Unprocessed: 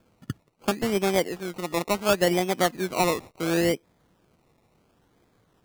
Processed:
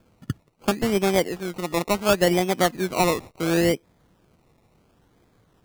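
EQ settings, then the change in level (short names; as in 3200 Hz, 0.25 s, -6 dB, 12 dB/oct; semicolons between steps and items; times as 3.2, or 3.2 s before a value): low shelf 140 Hz +5 dB; +2.0 dB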